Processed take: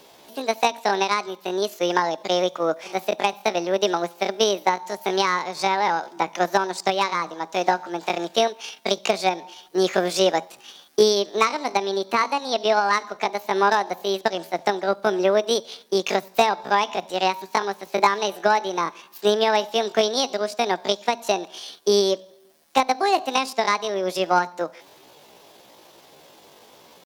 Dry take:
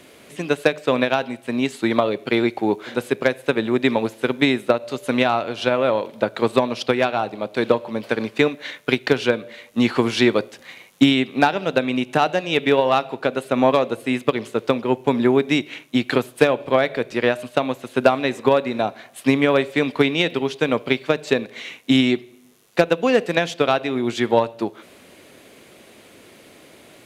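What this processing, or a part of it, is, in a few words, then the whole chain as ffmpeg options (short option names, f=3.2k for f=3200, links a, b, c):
chipmunk voice: -filter_complex "[0:a]asetrate=68011,aresample=44100,atempo=0.64842,asettb=1/sr,asplit=3[a][b][c];[a]atrim=end=11.774[d];[b]atrim=start=11.77:end=12.93,asetpts=PTS-STARTPTS,afade=t=in:d=0.004:c=qsin,afade=t=out:st=1.156:d=0.004:c=qsin,acrossover=split=5000[e][f];[f]acompressor=threshold=-38dB:ratio=4:attack=1:release=60[g];[e][g]amix=inputs=2:normalize=0[h];[c]atrim=start=12.926[i];[d][h]acrossfade=d=0.004:c1=hsin:c2=qsin[j];[j][i]acrossfade=d=0.004:c1=qsin:c2=hsin,volume=-2.5dB"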